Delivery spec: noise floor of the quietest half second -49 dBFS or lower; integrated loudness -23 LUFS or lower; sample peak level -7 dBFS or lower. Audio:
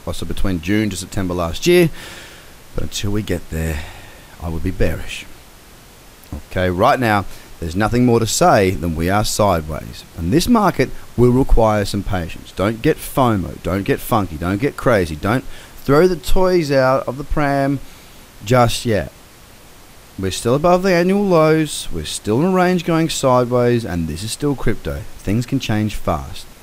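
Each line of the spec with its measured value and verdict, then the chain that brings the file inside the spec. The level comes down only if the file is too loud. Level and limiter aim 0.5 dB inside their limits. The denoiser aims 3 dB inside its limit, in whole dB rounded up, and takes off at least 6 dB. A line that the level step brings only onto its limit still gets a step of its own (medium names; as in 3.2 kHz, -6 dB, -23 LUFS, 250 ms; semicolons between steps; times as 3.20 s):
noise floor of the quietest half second -42 dBFS: fail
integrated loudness -17.5 LUFS: fail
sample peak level -2.0 dBFS: fail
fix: noise reduction 6 dB, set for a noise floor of -42 dBFS; trim -6 dB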